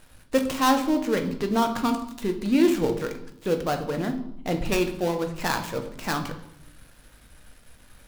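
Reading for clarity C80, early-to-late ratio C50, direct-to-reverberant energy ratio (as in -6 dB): 13.5 dB, 10.5 dB, 5.0 dB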